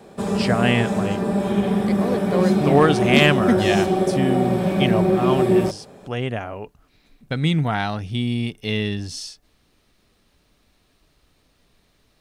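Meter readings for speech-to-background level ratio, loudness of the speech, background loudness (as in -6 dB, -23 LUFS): -2.0 dB, -22.5 LUFS, -20.5 LUFS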